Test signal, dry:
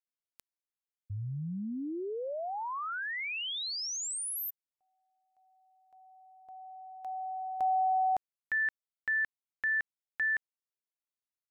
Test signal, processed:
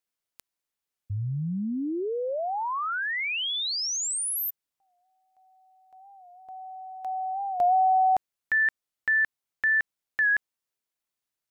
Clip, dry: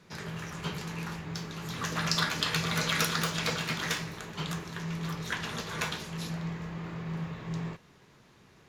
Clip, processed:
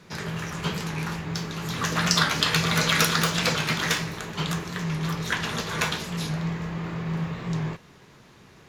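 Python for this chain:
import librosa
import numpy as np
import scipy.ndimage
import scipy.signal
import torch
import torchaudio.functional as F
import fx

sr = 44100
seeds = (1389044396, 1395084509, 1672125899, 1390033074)

y = fx.record_warp(x, sr, rpm=45.0, depth_cents=100.0)
y = F.gain(torch.from_numpy(y), 7.0).numpy()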